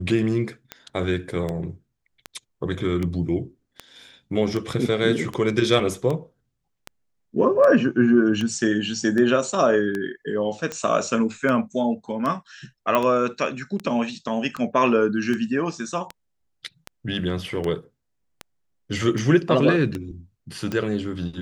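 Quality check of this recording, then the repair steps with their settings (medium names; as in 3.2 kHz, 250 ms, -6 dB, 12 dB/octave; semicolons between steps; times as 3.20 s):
tick 78 rpm -15 dBFS
12.95 s: pop -8 dBFS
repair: de-click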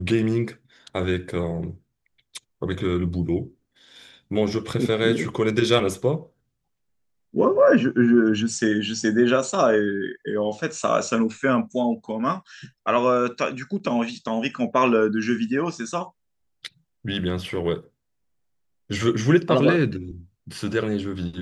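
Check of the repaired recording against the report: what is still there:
nothing left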